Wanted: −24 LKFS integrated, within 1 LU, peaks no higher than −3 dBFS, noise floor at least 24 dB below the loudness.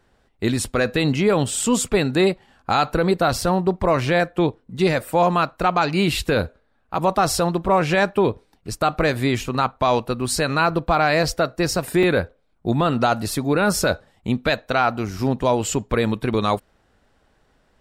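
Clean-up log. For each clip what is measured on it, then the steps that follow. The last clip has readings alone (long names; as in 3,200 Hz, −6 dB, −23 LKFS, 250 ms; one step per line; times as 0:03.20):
number of dropouts 2; longest dropout 3.4 ms; integrated loudness −21.0 LKFS; sample peak −8.0 dBFS; target loudness −24.0 LKFS
→ repair the gap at 0:03.41/0:12.03, 3.4 ms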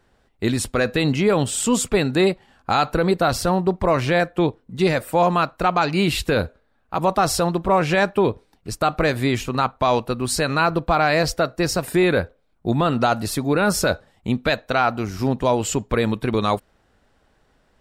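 number of dropouts 0; integrated loudness −21.0 LKFS; sample peak −8.0 dBFS; target loudness −24.0 LKFS
→ level −3 dB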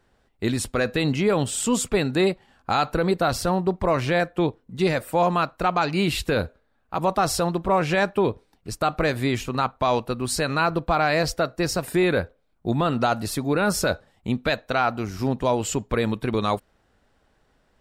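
integrated loudness −24.0 LKFS; sample peak −11.0 dBFS; background noise floor −66 dBFS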